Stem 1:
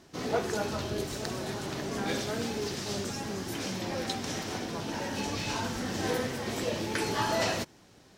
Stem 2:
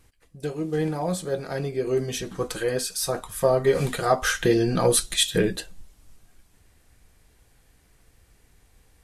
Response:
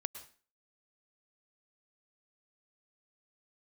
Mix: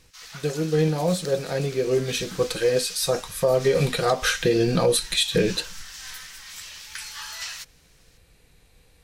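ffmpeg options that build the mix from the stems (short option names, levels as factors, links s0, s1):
-filter_complex "[0:a]highpass=f=1200:w=0.5412,highpass=f=1200:w=1.3066,highshelf=f=2800:g=10,volume=0.473[s0];[1:a]equalizer=f=160:t=o:w=0.33:g=7,equalizer=f=500:t=o:w=0.33:g=7,equalizer=f=2500:t=o:w=0.33:g=7,equalizer=f=4000:t=o:w=0.33:g=9,volume=1[s1];[s0][s1]amix=inputs=2:normalize=0,alimiter=limit=0.282:level=0:latency=1:release=96"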